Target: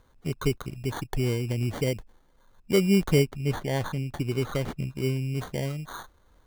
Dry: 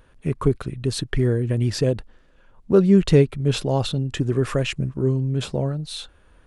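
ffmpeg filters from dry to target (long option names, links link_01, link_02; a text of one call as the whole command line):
ffmpeg -i in.wav -filter_complex "[0:a]acrusher=samples=17:mix=1:aa=0.000001,asplit=3[link_01][link_02][link_03];[link_01]afade=type=out:start_time=3.25:duration=0.02[link_04];[link_02]adynamicequalizer=threshold=0.00708:dfrequency=4400:dqfactor=0.7:tfrequency=4400:tqfactor=0.7:attack=5:release=100:ratio=0.375:range=2.5:mode=cutabove:tftype=highshelf,afade=type=in:start_time=3.25:duration=0.02,afade=type=out:start_time=5.34:duration=0.02[link_05];[link_03]afade=type=in:start_time=5.34:duration=0.02[link_06];[link_04][link_05][link_06]amix=inputs=3:normalize=0,volume=-6.5dB" out.wav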